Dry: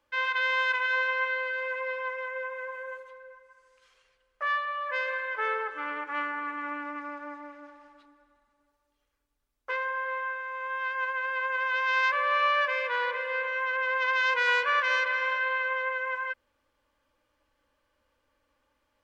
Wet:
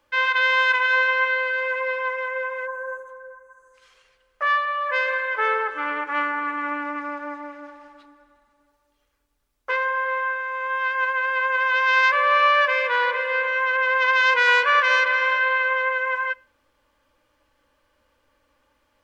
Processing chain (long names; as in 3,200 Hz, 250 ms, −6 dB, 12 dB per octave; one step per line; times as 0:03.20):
on a send at −21 dB: convolution reverb RT60 0.45 s, pre-delay 6 ms
on the sum: gain on a spectral selection 0:02.67–0:03.74, 1,800–6,000 Hz −18 dB
level +7.5 dB